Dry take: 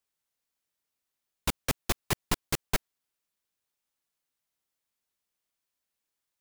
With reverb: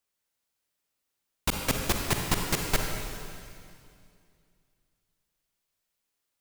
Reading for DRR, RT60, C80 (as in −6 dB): 1.5 dB, 2.3 s, 3.5 dB